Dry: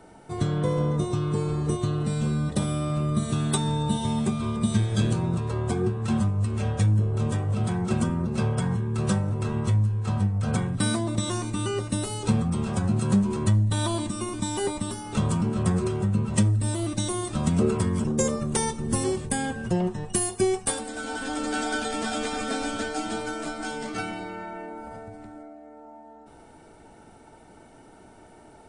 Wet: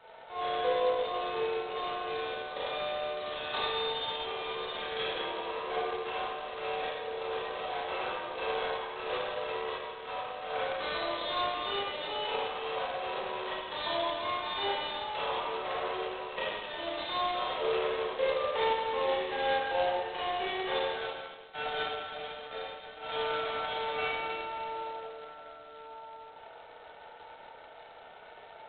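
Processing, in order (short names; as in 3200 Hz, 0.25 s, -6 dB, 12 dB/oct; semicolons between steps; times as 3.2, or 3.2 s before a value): elliptic high-pass 480 Hz, stop band 70 dB; 21.07–23.03 gate -29 dBFS, range -42 dB; dynamic EQ 1400 Hz, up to -6 dB, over -53 dBFS, Q 2.8; Schroeder reverb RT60 1.4 s, combs from 26 ms, DRR -8.5 dB; gain -5 dB; G.726 16 kbps 8000 Hz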